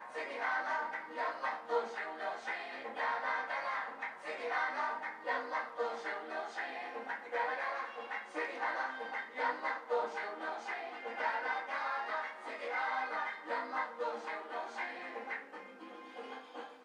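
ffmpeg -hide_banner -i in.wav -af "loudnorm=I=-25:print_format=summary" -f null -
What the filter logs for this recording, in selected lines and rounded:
Input Integrated:    -38.7 LUFS
Input True Peak:     -21.1 dBTP
Input LRA:             5.1 LU
Input Threshold:     -48.9 LUFS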